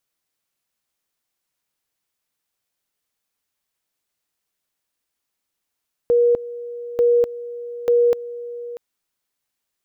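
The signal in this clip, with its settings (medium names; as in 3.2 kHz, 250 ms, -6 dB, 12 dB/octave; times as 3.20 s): two-level tone 478 Hz -12 dBFS, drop 16.5 dB, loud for 0.25 s, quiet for 0.64 s, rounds 3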